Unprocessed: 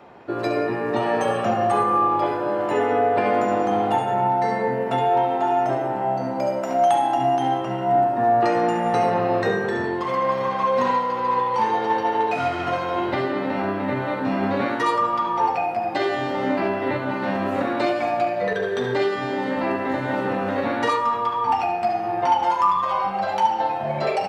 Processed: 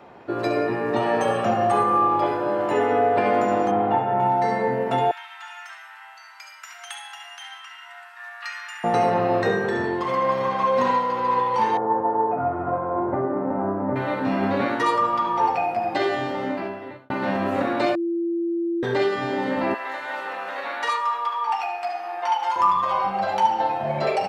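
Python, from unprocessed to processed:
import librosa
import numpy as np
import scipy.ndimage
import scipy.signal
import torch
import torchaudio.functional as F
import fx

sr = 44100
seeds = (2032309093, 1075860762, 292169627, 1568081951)

y = fx.lowpass(x, sr, hz=2100.0, slope=12, at=(3.71, 4.2))
y = fx.cheby2_highpass(y, sr, hz=560.0, order=4, stop_db=50, at=(5.11, 8.84))
y = fx.lowpass(y, sr, hz=1200.0, slope=24, at=(11.77, 13.96))
y = fx.highpass(y, sr, hz=940.0, slope=12, at=(19.74, 22.56))
y = fx.edit(y, sr, fx.fade_out_span(start_s=16.09, length_s=1.01),
    fx.bleep(start_s=17.95, length_s=0.88, hz=339.0, db=-21.5), tone=tone)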